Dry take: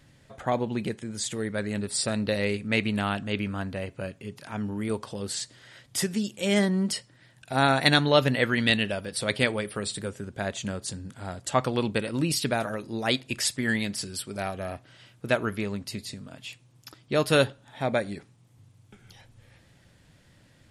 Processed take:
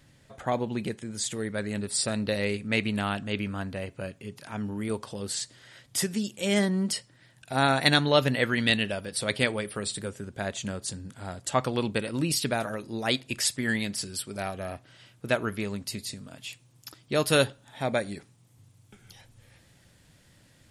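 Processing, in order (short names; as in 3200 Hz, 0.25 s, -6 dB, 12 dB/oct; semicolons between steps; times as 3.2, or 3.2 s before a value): high shelf 5600 Hz +3.5 dB, from 15.61 s +8.5 dB; gain -1.5 dB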